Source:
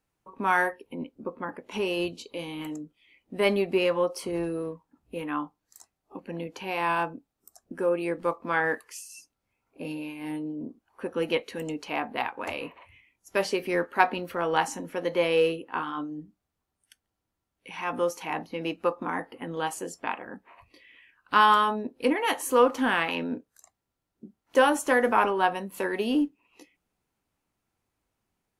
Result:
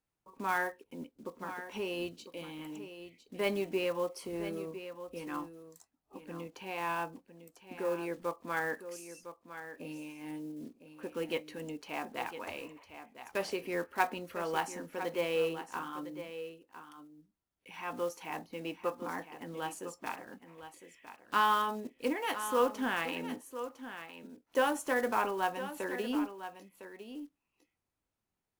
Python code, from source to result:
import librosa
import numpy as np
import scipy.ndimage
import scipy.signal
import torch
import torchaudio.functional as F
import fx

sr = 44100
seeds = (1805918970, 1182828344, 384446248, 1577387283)

p1 = fx.block_float(x, sr, bits=5)
p2 = p1 + fx.echo_single(p1, sr, ms=1006, db=-11.5, dry=0)
y = p2 * librosa.db_to_amplitude(-8.5)